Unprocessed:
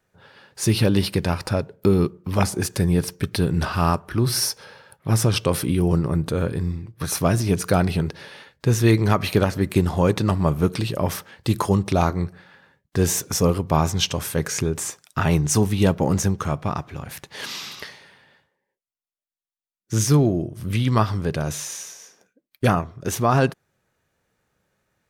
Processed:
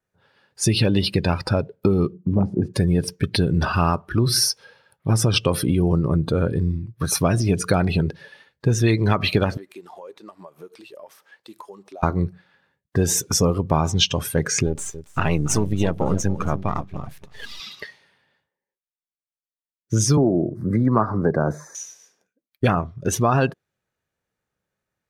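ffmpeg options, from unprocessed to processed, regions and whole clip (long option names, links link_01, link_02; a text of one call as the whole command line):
ffmpeg -i in.wav -filter_complex "[0:a]asettb=1/sr,asplit=3[link_01][link_02][link_03];[link_01]atrim=end=2.144[link_04];[link_02]atrim=start=2.14:end=2.74,asetpts=PTS-STARTPTS,afade=type=in:duration=0.004:curve=qsin,afade=type=out:start_time=0.596:duration=0.004:curve=qsin,acontrast=30,bandpass=frequency=200:width_type=q:width=1[link_05];[link_03]atrim=start=2.736[link_06];[link_04][link_05]acrossfade=duration=0.004:curve1=hsin:curve2=qsin[link_07];[link_07][link_06]acrossfade=duration=0.004:curve1=qsin:curve2=hsin,asettb=1/sr,asplit=3[link_08][link_09][link_10];[link_08]atrim=end=9.574[link_11];[link_09]atrim=start=9.57:end=12.03,asetpts=PTS-STARTPTS,afade=type=in:duration=0.004:curve=qsin,afade=type=out:start_time=2.456:duration=0.004:curve=qsin,highpass=480,acompressor=threshold=-38dB:ratio=5:attack=3.2:release=140:knee=1:detection=peak[link_12];[link_10]atrim=start=12.026[link_13];[link_11][link_12]acrossfade=duration=0.004:curve1=hsin:curve2=qsin[link_14];[link_14][link_13]acrossfade=duration=0.004:curve1=qsin:curve2=hsin,asettb=1/sr,asplit=3[link_15][link_16][link_17];[link_15]atrim=end=14.664[link_18];[link_16]atrim=start=14.66:end=17.6,asetpts=PTS-STARTPTS,afade=type=in:duration=0.004:curve=qsin,afade=type=out:start_time=2.936:duration=0.004:curve=qsin,aeval=exprs='if(lt(val(0),0),0.251*val(0),val(0))':channel_layout=same,aecho=1:1:282|564|846:0.237|0.0569|0.0137,atrim=end_sample=129654[link_19];[link_17]atrim=start=17.596[link_20];[link_18][link_19]acrossfade=duration=0.004:curve1=hsin:curve2=qsin[link_21];[link_21][link_20]acrossfade=duration=0.004:curve1=qsin:curve2=hsin,asettb=1/sr,asplit=3[link_22][link_23][link_24];[link_22]atrim=end=20.174[link_25];[link_23]atrim=start=20.17:end=21.75,asetpts=PTS-STARTPTS,afade=type=in:duration=0.004:curve=qsin,afade=type=out:start_time=1.576:duration=0.004:curve=qsin,acrossover=split=160 2100:gain=0.2 1 0.158[link_26][link_27][link_28];[link_26][link_27][link_28]amix=inputs=3:normalize=0,acontrast=61,asuperstop=centerf=2900:order=4:qfactor=1.1[link_29];[link_24]atrim=start=21.746[link_30];[link_25][link_29]acrossfade=duration=0.004:curve1=hsin:curve2=qsin[link_31];[link_31][link_30]acrossfade=duration=0.004:curve1=qsin:curve2=hsin,afftdn=noise_reduction=15:noise_floor=-32,adynamicequalizer=threshold=0.00794:dfrequency=3300:dqfactor=1:tfrequency=3300:tqfactor=1:attack=5:release=100:ratio=0.375:range=2.5:mode=boostabove:tftype=bell,acompressor=threshold=-19dB:ratio=4,volume=4dB" out.wav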